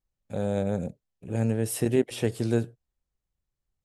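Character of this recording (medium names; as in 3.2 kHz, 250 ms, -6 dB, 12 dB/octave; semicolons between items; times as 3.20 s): noise floor -87 dBFS; spectral tilt -6.0 dB/octave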